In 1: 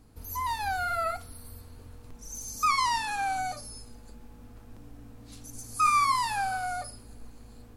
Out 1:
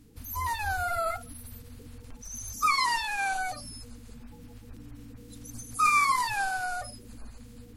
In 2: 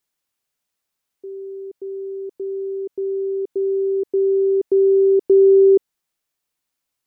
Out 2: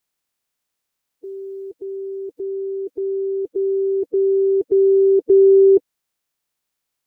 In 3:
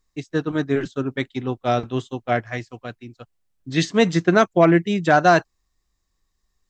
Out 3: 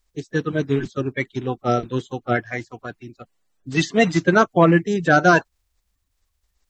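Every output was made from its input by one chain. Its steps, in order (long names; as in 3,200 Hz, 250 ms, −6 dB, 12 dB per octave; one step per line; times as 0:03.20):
spectral magnitudes quantised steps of 30 dB
level +1 dB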